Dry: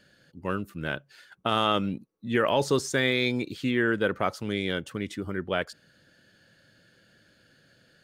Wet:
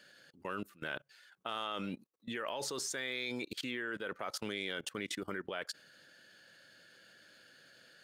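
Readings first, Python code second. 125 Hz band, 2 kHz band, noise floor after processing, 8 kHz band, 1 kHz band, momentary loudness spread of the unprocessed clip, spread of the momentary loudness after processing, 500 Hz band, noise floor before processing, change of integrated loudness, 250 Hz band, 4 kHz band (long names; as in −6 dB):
−18.0 dB, −10.0 dB, −68 dBFS, −2.5 dB, −13.0 dB, 10 LU, 22 LU, −14.5 dB, −63 dBFS, −12.0 dB, −14.0 dB, −8.5 dB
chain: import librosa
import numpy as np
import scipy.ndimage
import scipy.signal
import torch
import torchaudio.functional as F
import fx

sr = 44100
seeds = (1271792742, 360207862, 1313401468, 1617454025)

y = fx.highpass(x, sr, hz=690.0, slope=6)
y = fx.level_steps(y, sr, step_db=22)
y = F.gain(torch.from_numpy(y), 5.0).numpy()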